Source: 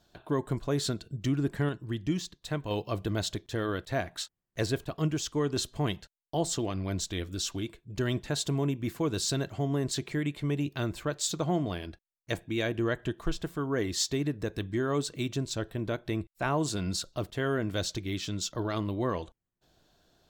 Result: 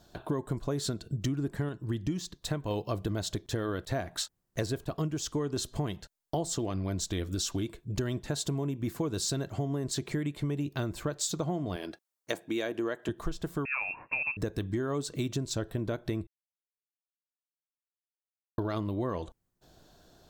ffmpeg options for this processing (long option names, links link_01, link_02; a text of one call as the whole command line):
ffmpeg -i in.wav -filter_complex "[0:a]asettb=1/sr,asplit=3[link_01][link_02][link_03];[link_01]atrim=end=11.764[link_04];[link_02]atrim=start=11.76:end=13.09,asetpts=PTS-STARTPTS,afade=type=in:duration=0.004:curve=qsin,afade=type=out:start_time=1.326:duration=0.004:curve=qsin,highpass=300[link_05];[link_03]atrim=start=13.086[link_06];[link_04][link_05]acrossfade=duration=0.004:curve1=hsin:curve2=qsin[link_07];[link_07][link_06]acrossfade=duration=0.004:curve1=qsin:curve2=hsin,asettb=1/sr,asplit=3[link_08][link_09][link_10];[link_08]atrim=end=13.654[link_11];[link_09]atrim=start=13.65:end=14.37,asetpts=PTS-STARTPTS,afade=type=in:duration=0.004:curve=qsin,afade=type=out:start_time=0.716:duration=0.004:curve=qsin,lowpass=frequency=2400:width_type=q:width=0.5098,lowpass=frequency=2400:width_type=q:width=0.6013,lowpass=frequency=2400:width_type=q:width=0.9,lowpass=frequency=2400:width_type=q:width=2.563,afreqshift=-2800[link_12];[link_10]atrim=start=14.366[link_13];[link_11][link_12]acrossfade=duration=0.004:curve1=hsin:curve2=qsin[link_14];[link_14][link_13]acrossfade=duration=0.004:curve1=qsin:curve2=hsin,asplit=3[link_15][link_16][link_17];[link_15]atrim=end=16.27,asetpts=PTS-STARTPTS,afade=type=out:start_time=16.266:duration=0.004:curve=hsin[link_18];[link_16]atrim=start=16.27:end=18.58,asetpts=PTS-STARTPTS,volume=0[link_19];[link_17]atrim=start=18.58,asetpts=PTS-STARTPTS,afade=type=in:duration=0.004:curve=hsin[link_20];[link_18][link_19][link_20]concat=n=3:v=0:a=1,equalizer=frequency=2600:width=0.9:gain=-5.5,acompressor=threshold=-37dB:ratio=6,volume=8dB" out.wav